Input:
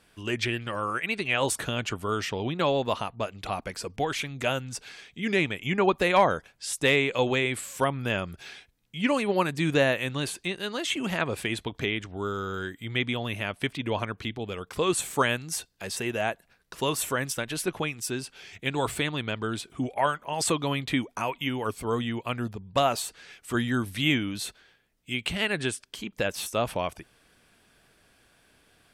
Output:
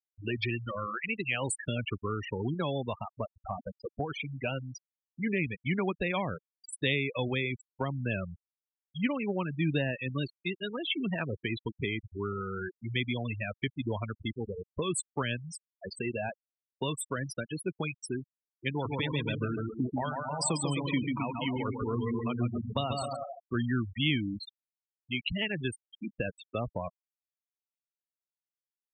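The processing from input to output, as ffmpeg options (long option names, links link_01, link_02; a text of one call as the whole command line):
ffmpeg -i in.wav -filter_complex "[0:a]asplit=3[link_01][link_02][link_03];[link_01]afade=type=out:start_time=18.83:duration=0.02[link_04];[link_02]aecho=1:1:140|259|360.2|446.1|519.2:0.631|0.398|0.251|0.158|0.1,afade=type=in:start_time=18.83:duration=0.02,afade=type=out:start_time=23.53:duration=0.02[link_05];[link_03]afade=type=in:start_time=23.53:duration=0.02[link_06];[link_04][link_05][link_06]amix=inputs=3:normalize=0,afftfilt=real='re*gte(hypot(re,im),0.0794)':imag='im*gte(hypot(re,im),0.0794)':win_size=1024:overlap=0.75,acrossover=split=230|3000[link_07][link_08][link_09];[link_08]acompressor=threshold=-34dB:ratio=4[link_10];[link_07][link_10][link_09]amix=inputs=3:normalize=0" out.wav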